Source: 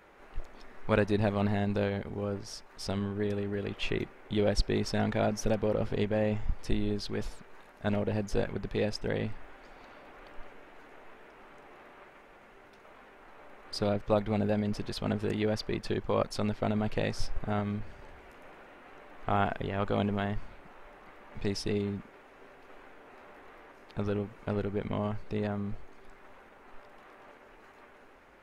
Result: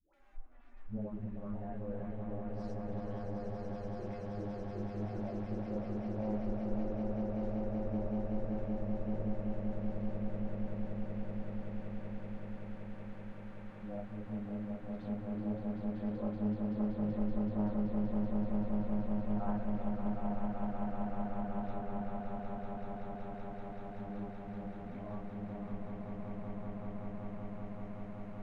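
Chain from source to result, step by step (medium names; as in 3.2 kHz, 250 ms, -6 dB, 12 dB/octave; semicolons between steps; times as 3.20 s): harmonic-percussive separation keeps harmonic; hum notches 50/100/150/200 Hz; phase dispersion highs, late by 140 ms, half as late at 590 Hz; flange 0.13 Hz, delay 3.3 ms, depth 5.3 ms, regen +78%; low-pass that closes with the level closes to 950 Hz, closed at -35 dBFS; peaking EQ 420 Hz -13.5 dB 0.32 oct; on a send: echo with a slow build-up 190 ms, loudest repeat 8, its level -4 dB; on the sum: loudspeaker Doppler distortion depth 0.35 ms; trim -4.5 dB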